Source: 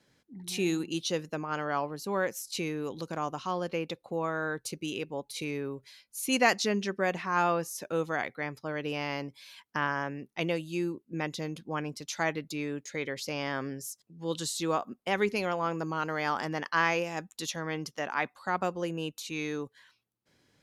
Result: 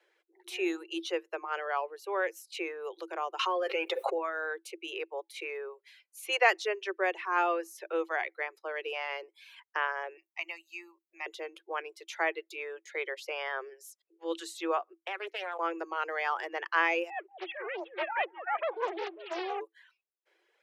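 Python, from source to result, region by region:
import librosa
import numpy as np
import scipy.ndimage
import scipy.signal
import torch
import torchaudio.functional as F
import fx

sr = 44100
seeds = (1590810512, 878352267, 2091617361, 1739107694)

y = fx.chain(x, sr, fx.comb(ms=7.4, depth=0.59),
    fx.env_flatten(amount_pct=100), at=(3.39, 4.18))
y = fx.chain(y, sr, fx.highpass(hz=1400.0, slope=6),
    fx.high_shelf(hz=9600.0, db=10.5),
    fx.fixed_phaser(hz=2300.0, stages=8), at=(10.17, 11.26))
y = fx.chain(y, sr, fx.weighting(curve='A'),
    fx.level_steps(step_db=12),
    fx.doppler_dist(depth_ms=0.34), at=(14.96, 15.59))
y = fx.chain(y, sr, fx.sine_speech(),
    fx.echo_alternate(ms=183, hz=850.0, feedback_pct=61, wet_db=-10),
    fx.doppler_dist(depth_ms=0.94), at=(17.1, 19.61))
y = fx.high_shelf_res(y, sr, hz=3600.0, db=-8.0, q=1.5)
y = fx.dereverb_blind(y, sr, rt60_s=0.64)
y = scipy.signal.sosfilt(scipy.signal.cheby1(10, 1.0, 330.0, 'highpass', fs=sr, output='sos'), y)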